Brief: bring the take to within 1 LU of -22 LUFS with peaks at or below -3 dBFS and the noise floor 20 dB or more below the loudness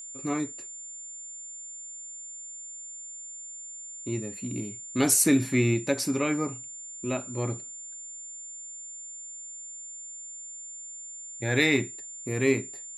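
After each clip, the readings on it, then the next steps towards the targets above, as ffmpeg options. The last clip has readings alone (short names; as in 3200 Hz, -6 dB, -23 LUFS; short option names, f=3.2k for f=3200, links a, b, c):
steady tone 7200 Hz; tone level -39 dBFS; loudness -30.0 LUFS; peak -8.5 dBFS; loudness target -22.0 LUFS
-> -af "bandreject=f=7.2k:w=30"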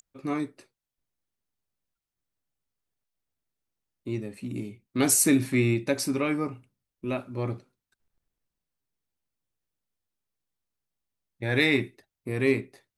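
steady tone none; loudness -27.0 LUFS; peak -8.5 dBFS; loudness target -22.0 LUFS
-> -af "volume=5dB"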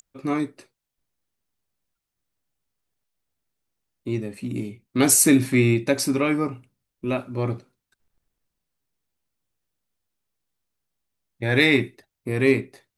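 loudness -22.0 LUFS; peak -3.5 dBFS; noise floor -84 dBFS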